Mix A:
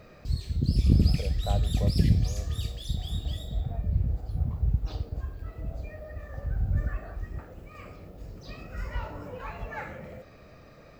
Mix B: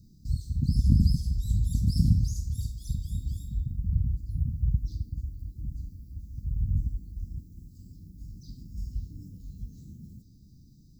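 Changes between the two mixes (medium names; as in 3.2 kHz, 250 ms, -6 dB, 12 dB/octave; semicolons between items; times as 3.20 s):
speech -7.0 dB; master: add inverse Chebyshev band-stop 550–2500 Hz, stop band 50 dB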